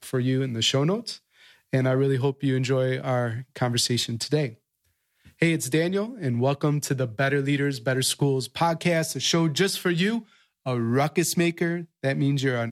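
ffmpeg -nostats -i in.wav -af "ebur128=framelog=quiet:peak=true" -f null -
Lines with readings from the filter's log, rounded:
Integrated loudness:
  I:         -24.6 LUFS
  Threshold: -35.0 LUFS
Loudness range:
  LRA:         2.2 LU
  Threshold: -45.1 LUFS
  LRA low:   -26.2 LUFS
  LRA high:  -24.0 LUFS
True peak:
  Peak:      -10.1 dBFS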